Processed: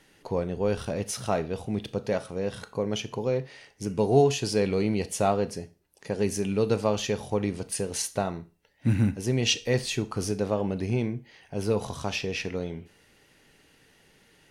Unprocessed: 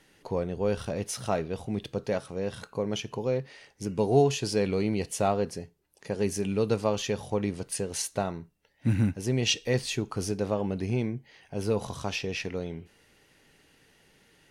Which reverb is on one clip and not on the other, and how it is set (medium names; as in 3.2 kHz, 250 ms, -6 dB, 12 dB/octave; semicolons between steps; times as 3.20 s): Schroeder reverb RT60 0.33 s, combs from 26 ms, DRR 15 dB; trim +1.5 dB